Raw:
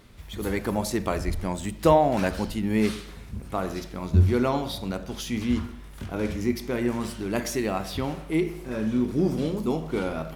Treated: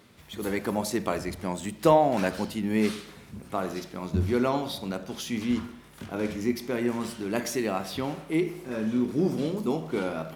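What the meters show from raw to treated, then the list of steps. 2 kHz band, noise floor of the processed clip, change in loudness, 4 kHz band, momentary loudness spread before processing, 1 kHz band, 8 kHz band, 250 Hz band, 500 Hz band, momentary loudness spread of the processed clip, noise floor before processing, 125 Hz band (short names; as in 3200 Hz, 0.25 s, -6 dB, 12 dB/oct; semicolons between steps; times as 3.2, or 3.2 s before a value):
-1.0 dB, -50 dBFS, -2.0 dB, -1.0 dB, 12 LU, -1.0 dB, -1.0 dB, -1.5 dB, -1.0 dB, 9 LU, -42 dBFS, -6.5 dB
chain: HPF 140 Hz 12 dB/oct; gain -1 dB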